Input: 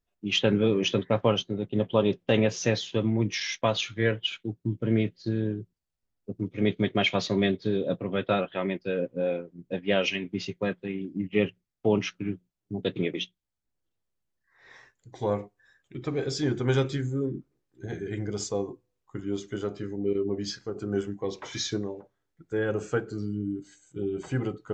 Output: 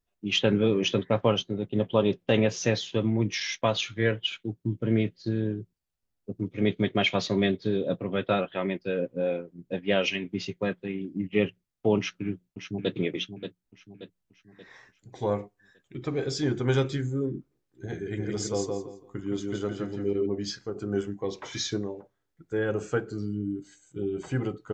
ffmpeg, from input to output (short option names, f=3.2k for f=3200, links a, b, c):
-filter_complex "[0:a]asplit=2[a][b];[b]afade=t=in:st=11.98:d=0.01,afade=t=out:st=12.93:d=0.01,aecho=0:1:580|1160|1740|2320|2900:0.354813|0.159666|0.0718497|0.0323324|0.0145496[c];[a][c]amix=inputs=2:normalize=0,asplit=3[d][e][f];[d]afade=t=out:st=18.17:d=0.02[g];[e]aecho=1:1:168|336|504:0.668|0.147|0.0323,afade=t=in:st=18.17:d=0.02,afade=t=out:st=20.25:d=0.02[h];[f]afade=t=in:st=20.25:d=0.02[i];[g][h][i]amix=inputs=3:normalize=0"